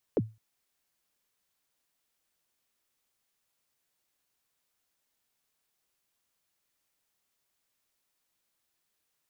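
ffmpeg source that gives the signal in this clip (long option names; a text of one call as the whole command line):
ffmpeg -f lavfi -i "aevalsrc='0.112*pow(10,-3*t/0.27)*sin(2*PI*(550*0.039/log(110/550)*(exp(log(110/550)*min(t,0.039)/0.039)-1)+110*max(t-0.039,0)))':duration=0.21:sample_rate=44100" out.wav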